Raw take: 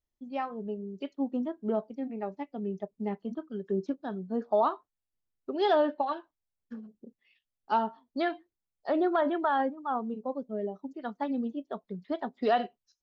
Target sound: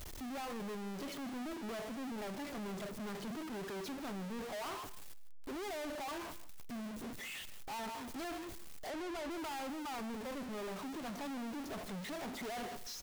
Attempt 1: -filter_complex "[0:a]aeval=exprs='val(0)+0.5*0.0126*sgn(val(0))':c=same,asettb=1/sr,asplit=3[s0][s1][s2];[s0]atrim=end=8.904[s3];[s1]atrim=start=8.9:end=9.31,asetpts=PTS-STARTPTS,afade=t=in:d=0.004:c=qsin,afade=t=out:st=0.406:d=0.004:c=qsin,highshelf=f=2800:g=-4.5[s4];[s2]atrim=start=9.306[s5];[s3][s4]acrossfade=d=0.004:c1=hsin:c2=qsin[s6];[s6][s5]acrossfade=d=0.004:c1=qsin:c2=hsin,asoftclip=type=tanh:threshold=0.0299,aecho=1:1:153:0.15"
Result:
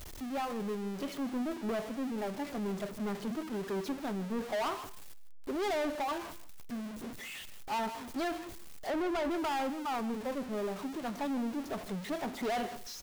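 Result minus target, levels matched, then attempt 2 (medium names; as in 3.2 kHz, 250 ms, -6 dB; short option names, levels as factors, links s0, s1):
saturation: distortion -6 dB
-filter_complex "[0:a]aeval=exprs='val(0)+0.5*0.0126*sgn(val(0))':c=same,asettb=1/sr,asplit=3[s0][s1][s2];[s0]atrim=end=8.904[s3];[s1]atrim=start=8.9:end=9.31,asetpts=PTS-STARTPTS,afade=t=in:d=0.004:c=qsin,afade=t=out:st=0.406:d=0.004:c=qsin,highshelf=f=2800:g=-4.5[s4];[s2]atrim=start=9.306[s5];[s3][s4]acrossfade=d=0.004:c1=hsin:c2=qsin[s6];[s6][s5]acrossfade=d=0.004:c1=qsin:c2=hsin,asoftclip=type=tanh:threshold=0.00891,aecho=1:1:153:0.15"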